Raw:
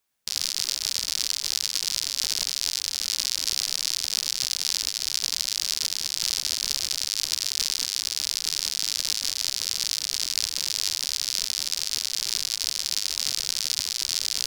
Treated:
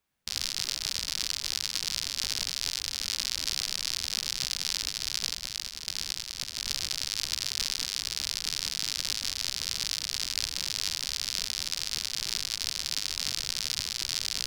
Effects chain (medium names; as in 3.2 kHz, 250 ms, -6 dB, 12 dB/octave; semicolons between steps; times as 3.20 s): 5.33–6.65 s: compressor with a negative ratio -31 dBFS, ratio -0.5; tone controls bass +8 dB, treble -7 dB